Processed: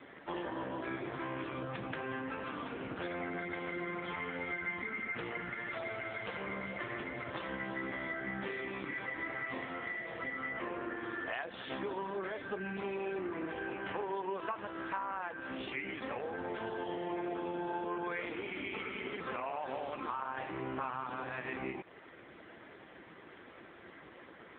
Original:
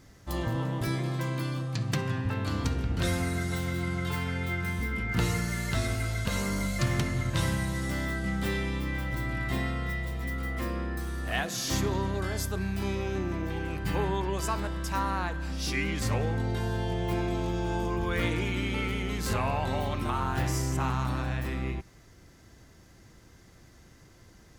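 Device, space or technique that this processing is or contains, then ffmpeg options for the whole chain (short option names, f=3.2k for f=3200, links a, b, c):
voicemail: -af "highpass=360,lowpass=3.2k,acompressor=threshold=-47dB:ratio=8,volume=13dB" -ar 8000 -c:a libopencore_amrnb -b:a 5150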